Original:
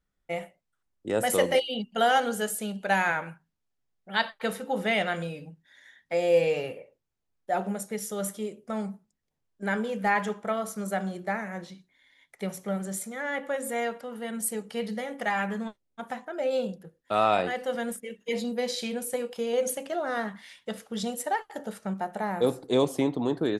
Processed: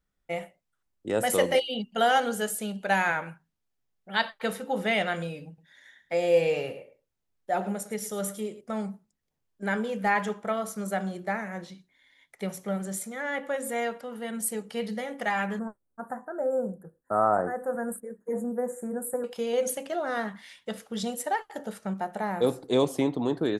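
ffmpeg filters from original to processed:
ffmpeg -i in.wav -filter_complex "[0:a]asettb=1/sr,asplit=3[link_01][link_02][link_03];[link_01]atrim=end=5.474[link_04];[link_02]atrim=start=5.47:end=8.61,asetpts=PTS-STARTPTS,afade=type=in:duration=0.004:curve=qsin,afade=type=out:start_time=3.136:duration=0.004:curve=qsin,aecho=1:1:108:0.188,atrim=end_sample=138474[link_05];[link_03]atrim=start=8.606[link_06];[link_04][link_05]acrossfade=duration=0.004:curve1=hsin:curve2=qsin[link_07];[link_07][link_06]acrossfade=duration=0.004:curve1=qsin:curve2=hsin,asettb=1/sr,asplit=3[link_08][link_09][link_10];[link_08]atrim=end=15.594[link_11];[link_09]atrim=start=15.59:end=19.24,asetpts=PTS-STARTPTS,afade=type=in:duration=0.004:curve=qsin,afade=type=out:start_time=3.646:duration=0.004:curve=qsin,asuperstop=centerf=3700:order=12:qfactor=0.61[link_12];[link_10]atrim=start=19.236[link_13];[link_11][link_12]acrossfade=duration=0.004:curve1=hsin:curve2=qsin[link_14];[link_14][link_13]acrossfade=duration=0.004:curve1=qsin:curve2=hsin" out.wav

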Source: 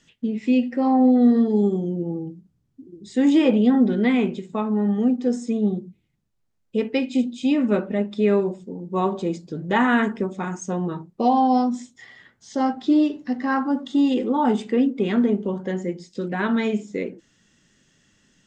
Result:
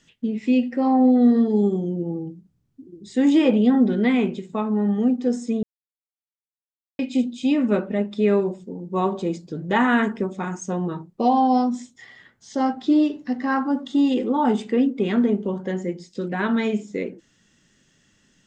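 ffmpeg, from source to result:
ffmpeg -i in.wav -filter_complex "[0:a]asplit=3[link_01][link_02][link_03];[link_01]atrim=end=5.63,asetpts=PTS-STARTPTS,afade=type=out:start_time=5.626:duration=0.004:curve=hsin[link_04];[link_02]atrim=start=5.63:end=6.99,asetpts=PTS-STARTPTS,volume=0[link_05];[link_03]atrim=start=6.99,asetpts=PTS-STARTPTS,afade=type=in:duration=0.004:curve=hsin[link_06];[link_04][link_05][link_06]concat=n=3:v=0:a=1" out.wav

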